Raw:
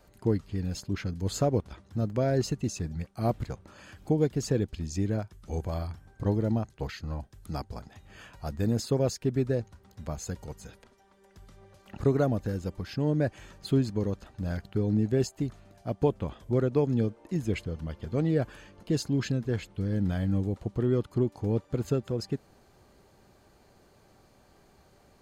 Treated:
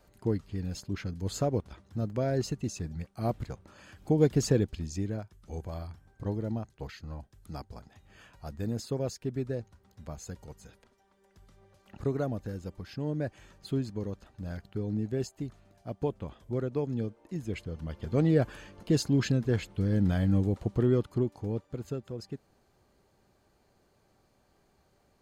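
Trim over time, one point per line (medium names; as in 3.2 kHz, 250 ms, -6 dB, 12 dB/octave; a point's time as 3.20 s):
4.00 s -3 dB
4.33 s +4.5 dB
5.19 s -6 dB
17.49 s -6 dB
18.19 s +2 dB
20.80 s +2 dB
21.80 s -8 dB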